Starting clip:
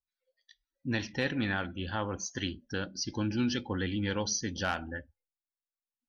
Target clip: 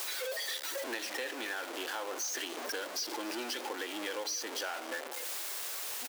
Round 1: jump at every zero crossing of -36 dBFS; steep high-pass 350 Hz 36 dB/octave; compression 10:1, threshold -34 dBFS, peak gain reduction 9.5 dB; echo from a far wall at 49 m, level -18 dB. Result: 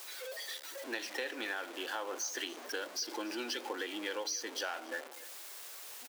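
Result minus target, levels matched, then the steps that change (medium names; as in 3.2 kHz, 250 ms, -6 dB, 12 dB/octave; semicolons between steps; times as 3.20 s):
jump at every zero crossing: distortion -7 dB
change: jump at every zero crossing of -25.5 dBFS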